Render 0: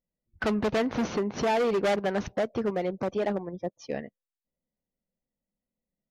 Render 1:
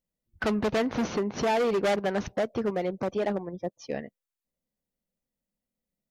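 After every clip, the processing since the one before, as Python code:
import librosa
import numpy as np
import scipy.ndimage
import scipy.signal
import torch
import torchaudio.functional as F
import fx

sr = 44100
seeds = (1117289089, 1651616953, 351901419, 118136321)

y = fx.high_shelf(x, sr, hz=7400.0, db=3.5)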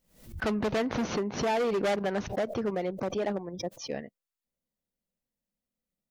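y = fx.pre_swell(x, sr, db_per_s=110.0)
y = y * 10.0 ** (-2.5 / 20.0)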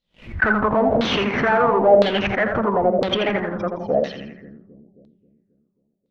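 y = fx.leveller(x, sr, passes=3)
y = fx.echo_split(y, sr, split_hz=340.0, low_ms=268, high_ms=83, feedback_pct=52, wet_db=-5)
y = fx.filter_lfo_lowpass(y, sr, shape='saw_down', hz=0.99, low_hz=580.0, high_hz=4000.0, q=5.2)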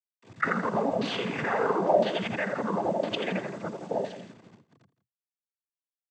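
y = fx.delta_hold(x, sr, step_db=-35.0)
y = fx.noise_vocoder(y, sr, seeds[0], bands=16)
y = y + 10.0 ** (-16.5 / 20.0) * np.pad(y, (int(166 * sr / 1000.0), 0))[:len(y)]
y = y * 10.0 ** (-9.0 / 20.0)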